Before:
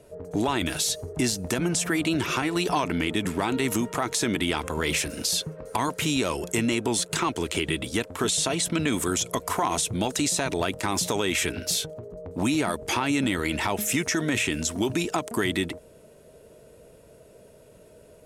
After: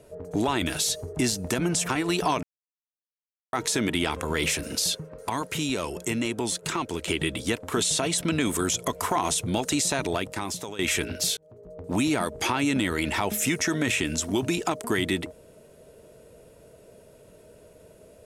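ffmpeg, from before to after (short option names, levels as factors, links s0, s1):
-filter_complex "[0:a]asplit=8[s0][s1][s2][s3][s4][s5][s6][s7];[s0]atrim=end=1.892[s8];[s1]atrim=start=2.358:end=2.9,asetpts=PTS-STARTPTS,afade=t=out:st=0.538:d=0.004:c=hsin[s9];[s2]atrim=start=2.9:end=4,asetpts=PTS-STARTPTS,volume=0[s10];[s3]atrim=start=4:end=5.422,asetpts=PTS-STARTPTS,afade=t=in:d=0.004:c=hsin[s11];[s4]atrim=start=5.418:end=7.552,asetpts=PTS-STARTPTS,volume=0.708[s12];[s5]atrim=start=7.548:end=11.26,asetpts=PTS-STARTPTS,afade=t=out:st=2.942:d=0.77:silence=0.188365[s13];[s6]atrim=start=11.26:end=11.84,asetpts=PTS-STARTPTS,afade=t=in:d=0.004:c=hsin:silence=0.188365,afade=t=out:st=0.576:d=0.004:c=hsin[s14];[s7]atrim=start=11.84,asetpts=PTS-STARTPTS,afade=t=in:d=0.54[s15];[s9][s10][s11]concat=n=3:v=0:a=1[s16];[s8][s16]acrossfade=d=0.004:c1=hsin:c2=hsin[s17];[s17][s12]acrossfade=d=0.004:c1=hsin:c2=hsin[s18];[s13][s14][s15]concat=n=3:v=0:a=1[s19];[s18][s19]acrossfade=d=0.004:c1=hsin:c2=hsin"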